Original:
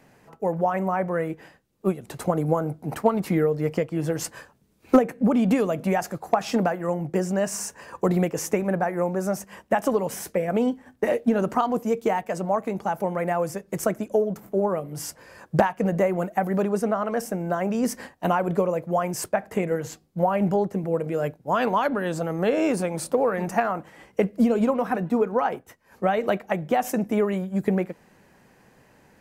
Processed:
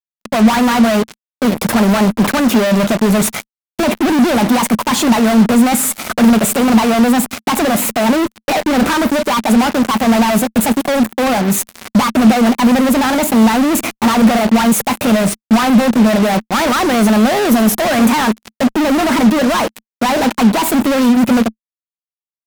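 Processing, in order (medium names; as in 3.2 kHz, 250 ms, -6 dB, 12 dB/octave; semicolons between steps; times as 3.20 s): feedback echo behind a high-pass 106 ms, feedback 70%, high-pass 4.4 kHz, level -19.5 dB; fuzz box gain 46 dB, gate -40 dBFS; tape speed +30%; peaking EQ 220 Hz +10.5 dB 0.37 oct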